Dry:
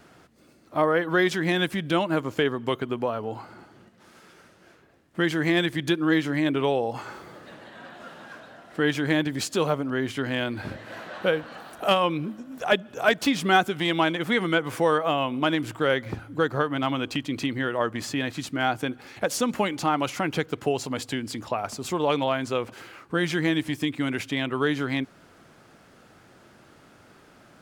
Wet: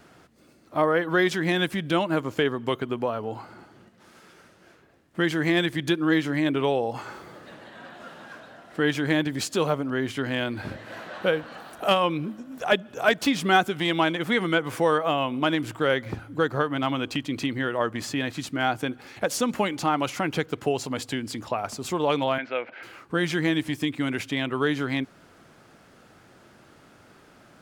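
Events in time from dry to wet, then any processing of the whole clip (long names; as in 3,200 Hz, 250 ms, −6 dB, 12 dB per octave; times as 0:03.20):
0:22.38–0:22.83: loudspeaker in its box 380–3,300 Hz, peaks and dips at 400 Hz −7 dB, 610 Hz +4 dB, 1,100 Hz −9 dB, 1,500 Hz +6 dB, 2,200 Hz +8 dB, 3,300 Hz −3 dB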